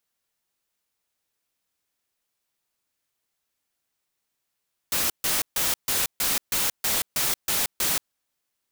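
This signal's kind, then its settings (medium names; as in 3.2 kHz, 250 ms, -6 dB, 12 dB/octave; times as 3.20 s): noise bursts white, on 0.18 s, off 0.14 s, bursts 10, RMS -24 dBFS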